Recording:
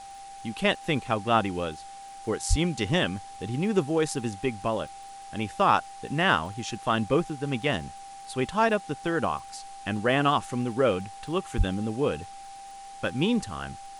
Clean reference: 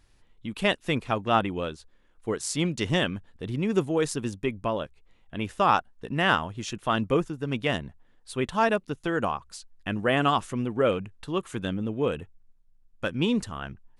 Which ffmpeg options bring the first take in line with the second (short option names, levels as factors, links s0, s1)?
-filter_complex "[0:a]adeclick=t=4,bandreject=f=790:w=30,asplit=3[s0][s1][s2];[s0]afade=t=out:st=2.49:d=0.02[s3];[s1]highpass=f=140:w=0.5412,highpass=f=140:w=1.3066,afade=t=in:st=2.49:d=0.02,afade=t=out:st=2.61:d=0.02[s4];[s2]afade=t=in:st=2.61:d=0.02[s5];[s3][s4][s5]amix=inputs=3:normalize=0,asplit=3[s6][s7][s8];[s6]afade=t=out:st=11.57:d=0.02[s9];[s7]highpass=f=140:w=0.5412,highpass=f=140:w=1.3066,afade=t=in:st=11.57:d=0.02,afade=t=out:st=11.69:d=0.02[s10];[s8]afade=t=in:st=11.69:d=0.02[s11];[s9][s10][s11]amix=inputs=3:normalize=0,afwtdn=0.0032"